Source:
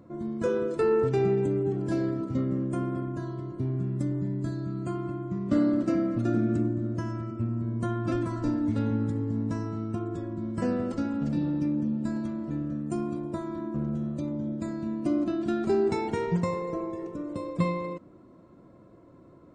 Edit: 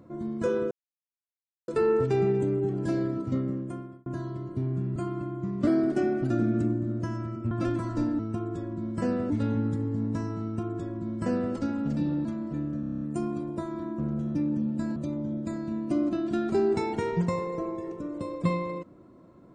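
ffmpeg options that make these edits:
-filter_complex "[0:a]asplit=19[s0][s1][s2][s3][s4][s5][s6][s7][s8][s9][s10][s11][s12][s13][s14][s15][s16][s17][s18];[s0]atrim=end=0.71,asetpts=PTS-STARTPTS,afade=t=out:st=0.706:d=0.004:c=hsin,apad=pad_dur=0.97[s19];[s1]atrim=start=0.71:end=3.09,asetpts=PTS-STARTPTS,afade=t=in:d=0.004:c=hsin,afade=t=out:st=1.67:d=0.71[s20];[s2]atrim=start=3.09:end=3.992,asetpts=PTS-STARTPTS,afade=t=in:d=0.004:c=hsin[s21];[s3]atrim=start=4.838:end=5.554[s22];[s4]atrim=start=5.55:end=6.25,asetpts=PTS-STARTPTS,asetrate=48951,aresample=44100[s23];[s5]atrim=start=6.246:end=7.462[s24];[s6]atrim=start=7.978:end=8.662[s25];[s7]atrim=start=9.788:end=10.902[s26];[s8]atrim=start=8.658:end=11.612[s27];[s9]atrim=start=12.218:end=12.802[s28];[s10]atrim=start=12.768:end=12.802[s29];[s11]atrim=start=12.768:end=12.802[s30];[s12]atrim=start=12.768:end=12.802[s31];[s13]atrim=start=12.768:end=12.802[s32];[s14]atrim=start=12.768:end=12.802[s33];[s15]atrim=start=12.768:end=12.802[s34];[s16]atrim=start=12.768:end=14.112[s35];[s17]atrim=start=11.608:end=12.222[s36];[s18]atrim=start=14.108[s37];[s19][s20][s21]concat=n=3:v=0:a=1[s38];[s38][s22]acrossfade=d=0.004:c1=hsin:c2=hsin[s39];[s39][s23]acrossfade=d=0.004:c1=hsin:c2=hsin[s40];[s40][s24]acrossfade=d=0.004:c1=hsin:c2=hsin[s41];[s41][s25]acrossfade=d=0.004:c1=hsin:c2=hsin[s42];[s42][s26]acrossfade=d=0.004:c1=hsin:c2=hsin[s43];[s43][s27]acrossfade=d=0.004:c1=hsin:c2=hsin[s44];[s44][s28]acrossfade=d=0.004:c1=hsin:c2=hsin[s45];[s45][s29]acrossfade=d=0.004:c1=hsin:c2=hsin[s46];[s46][s30]acrossfade=d=0.004:c1=hsin:c2=hsin[s47];[s47][s31]acrossfade=d=0.004:c1=hsin:c2=hsin[s48];[s48][s32]acrossfade=d=0.004:c1=hsin:c2=hsin[s49];[s49][s33]acrossfade=d=0.004:c1=hsin:c2=hsin[s50];[s50][s34]acrossfade=d=0.004:c1=hsin:c2=hsin[s51];[s51][s35]acrossfade=d=0.004:c1=hsin:c2=hsin[s52];[s52][s36]acrossfade=d=0.004:c1=hsin:c2=hsin[s53];[s53][s37]acrossfade=d=0.004:c1=hsin:c2=hsin"

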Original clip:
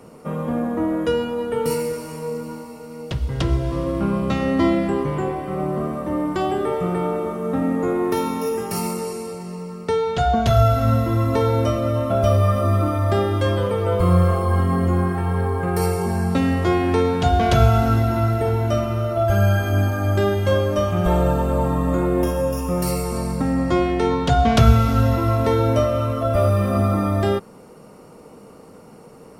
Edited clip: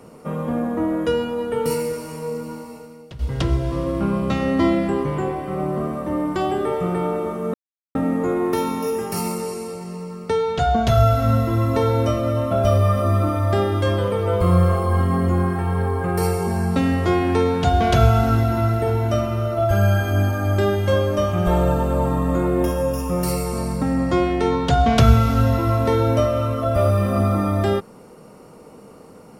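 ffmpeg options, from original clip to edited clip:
-filter_complex "[0:a]asplit=3[s0][s1][s2];[s0]atrim=end=3.19,asetpts=PTS-STARTPTS,afade=t=out:st=2.76:d=0.43:c=qua:silence=0.237137[s3];[s1]atrim=start=3.19:end=7.54,asetpts=PTS-STARTPTS,afade=t=in:d=0.004:c=hsin:silence=0.237137,afade=t=out:st=4.346:d=0.004:c=hsin,apad=pad_dur=0.41[s4];[s2]atrim=start=7.54,asetpts=PTS-STARTPTS,afade=t=in:d=0.004:c=hsin[s5];[s3][s4][s5]concat=n=3:v=0:a=1"

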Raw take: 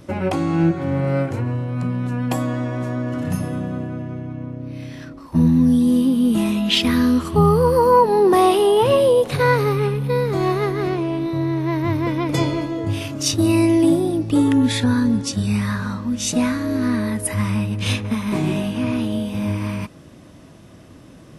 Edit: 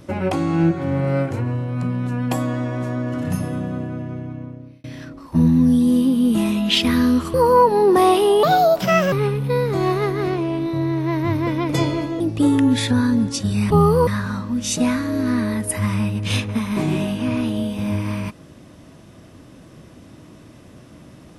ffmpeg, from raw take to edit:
-filter_complex "[0:a]asplit=8[s0][s1][s2][s3][s4][s5][s6][s7];[s0]atrim=end=4.84,asetpts=PTS-STARTPTS,afade=t=out:st=4.1:d=0.74:c=qsin[s8];[s1]atrim=start=4.84:end=7.342,asetpts=PTS-STARTPTS,afade=t=in:d=0.004:c=hsin[s9];[s2]atrim=start=7.708:end=8.804[s10];[s3]atrim=start=8.8:end=9.72,asetpts=PTS-STARTPTS,asetrate=58653,aresample=44100,atrim=end_sample=30505,asetpts=PTS-STARTPTS[s11];[s4]atrim=start=9.716:end=12.802[s12];[s5]atrim=start=14.128:end=15.632[s13];[s6]atrim=start=7.338:end=7.712[s14];[s7]atrim=start=15.628[s15];[s8][s9]concat=n=2:v=0:a=1[s16];[s16][s10]acrossfade=d=0.004:c1=hsin:c2=hsin[s17];[s17][s11]acrossfade=d=0.004:c1=hsin:c2=hsin[s18];[s18][s12]acrossfade=d=0.004:c1=hsin:c2=hsin[s19];[s19][s13]acrossfade=d=0.004:c1=hsin:c2=hsin[s20];[s20][s14]acrossfade=d=0.004:c1=hsin:c2=hsin[s21];[s21][s15]acrossfade=d=0.004:c1=hsin:c2=hsin"

